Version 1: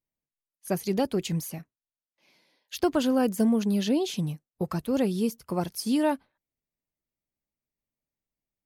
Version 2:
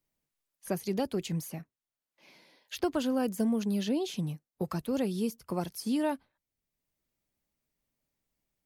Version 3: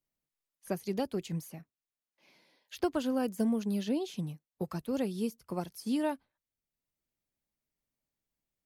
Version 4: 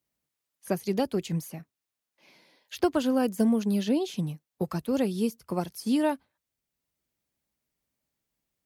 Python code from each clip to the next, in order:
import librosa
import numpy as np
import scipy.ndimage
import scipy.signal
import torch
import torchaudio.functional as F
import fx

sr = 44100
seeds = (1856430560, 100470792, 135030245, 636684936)

y1 = fx.band_squash(x, sr, depth_pct=40)
y1 = y1 * librosa.db_to_amplitude(-5.0)
y2 = fx.upward_expand(y1, sr, threshold_db=-37.0, expansion=1.5)
y3 = scipy.signal.sosfilt(scipy.signal.butter(2, 43.0, 'highpass', fs=sr, output='sos'), y2)
y3 = y3 * librosa.db_to_amplitude(6.0)